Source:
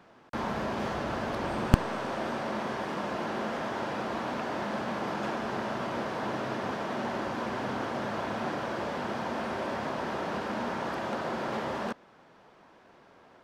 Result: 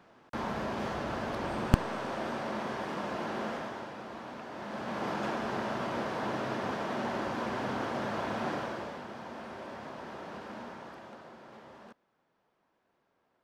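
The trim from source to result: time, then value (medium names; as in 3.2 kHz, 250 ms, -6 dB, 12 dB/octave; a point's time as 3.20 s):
3.50 s -2.5 dB
3.93 s -10 dB
4.50 s -10 dB
5.05 s -1 dB
8.56 s -1 dB
9.06 s -10 dB
10.57 s -10 dB
11.40 s -18.5 dB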